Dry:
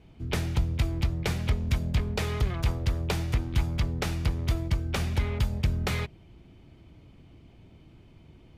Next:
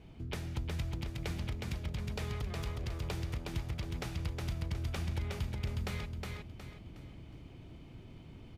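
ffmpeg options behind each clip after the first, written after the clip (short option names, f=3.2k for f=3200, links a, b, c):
-filter_complex "[0:a]acompressor=threshold=-42dB:ratio=2.5,asplit=2[a][b];[b]aecho=0:1:364|728|1092|1456|1820:0.708|0.255|0.0917|0.033|0.0119[c];[a][c]amix=inputs=2:normalize=0"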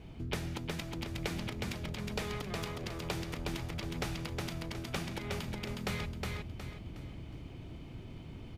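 -af "afftfilt=real='re*lt(hypot(re,im),0.112)':imag='im*lt(hypot(re,im),0.112)':win_size=1024:overlap=0.75,volume=4.5dB"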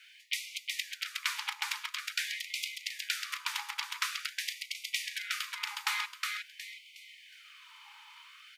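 -af "afftfilt=real='re*gte(b*sr/1024,790*pow(2000/790,0.5+0.5*sin(2*PI*0.47*pts/sr)))':imag='im*gte(b*sr/1024,790*pow(2000/790,0.5+0.5*sin(2*PI*0.47*pts/sr)))':win_size=1024:overlap=0.75,volume=8.5dB"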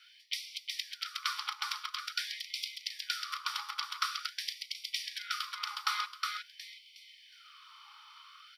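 -af "superequalizer=6b=2.82:10b=3.98:13b=2:14b=2.82:15b=0.501,aeval=exprs='0.376*(cos(1*acos(clip(val(0)/0.376,-1,1)))-cos(1*PI/2))+0.00299*(cos(2*acos(clip(val(0)/0.376,-1,1)))-cos(2*PI/2))':c=same,volume=-6.5dB"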